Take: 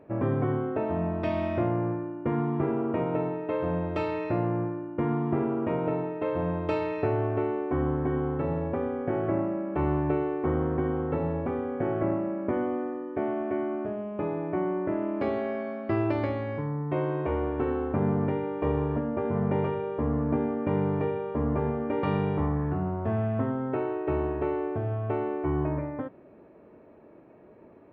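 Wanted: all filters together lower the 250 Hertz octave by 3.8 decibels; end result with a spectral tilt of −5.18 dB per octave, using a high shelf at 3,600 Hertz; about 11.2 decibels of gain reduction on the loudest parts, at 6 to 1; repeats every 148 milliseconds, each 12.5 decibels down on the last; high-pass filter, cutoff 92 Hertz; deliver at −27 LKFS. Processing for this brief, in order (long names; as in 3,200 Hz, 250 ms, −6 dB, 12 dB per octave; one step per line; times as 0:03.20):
high-pass filter 92 Hz
parametric band 250 Hz −5.5 dB
high-shelf EQ 3,600 Hz +5.5 dB
downward compressor 6 to 1, threshold −37 dBFS
repeating echo 148 ms, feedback 24%, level −12.5 dB
level +13 dB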